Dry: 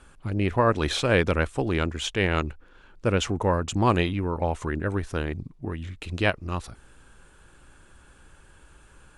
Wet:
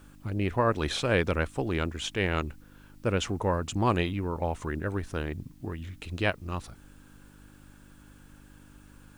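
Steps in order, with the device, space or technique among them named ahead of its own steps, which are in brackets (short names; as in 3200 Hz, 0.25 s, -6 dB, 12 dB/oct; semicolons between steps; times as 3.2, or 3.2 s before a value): video cassette with head-switching buzz (buzz 50 Hz, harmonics 6, -51 dBFS -1 dB/oct; white noise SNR 37 dB); gain -4 dB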